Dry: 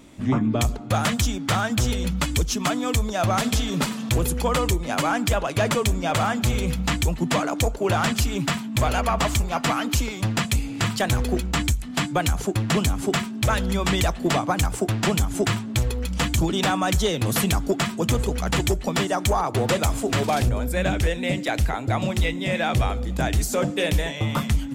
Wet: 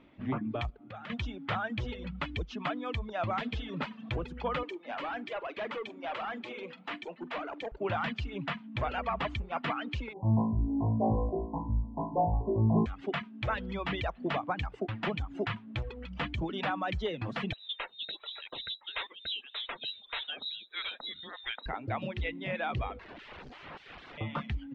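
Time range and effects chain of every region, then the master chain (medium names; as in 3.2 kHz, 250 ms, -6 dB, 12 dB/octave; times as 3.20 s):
0.70–1.10 s: band-stop 990 Hz + compression 4:1, threshold -32 dBFS
4.63–7.72 s: high-pass 260 Hz 24 dB/octave + hard clipper -23.5 dBFS + doubling 46 ms -12 dB
10.13–12.86 s: brick-wall FIR low-pass 1.1 kHz + flutter echo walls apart 3.1 m, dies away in 1 s
17.53–21.66 s: frequency inversion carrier 3.9 kHz + lamp-driven phase shifter 1.6 Hz
22.99–24.18 s: low-pass 2.8 kHz + integer overflow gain 31 dB + bass shelf 200 Hz +6.5 dB
whole clip: low-pass 3.1 kHz 24 dB/octave; reverb removal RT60 0.78 s; bass shelf 270 Hz -5.5 dB; trim -8 dB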